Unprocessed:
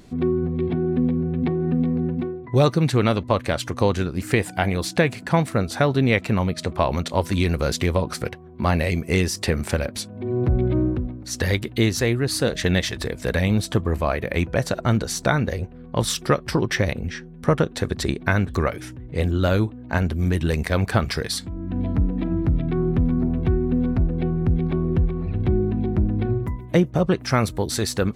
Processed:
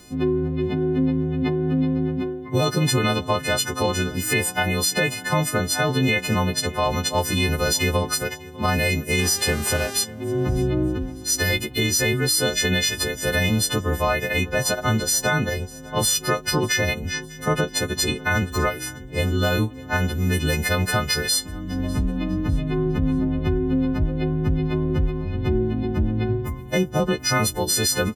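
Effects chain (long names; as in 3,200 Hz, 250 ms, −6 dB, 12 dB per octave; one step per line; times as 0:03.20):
every partial snapped to a pitch grid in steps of 3 semitones
0:09.18–0:10.03: hum with harmonics 400 Hz, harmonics 31, −35 dBFS −4 dB per octave
brickwall limiter −11 dBFS, peak gain reduction 8.5 dB
on a send: repeating echo 600 ms, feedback 38%, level −22.5 dB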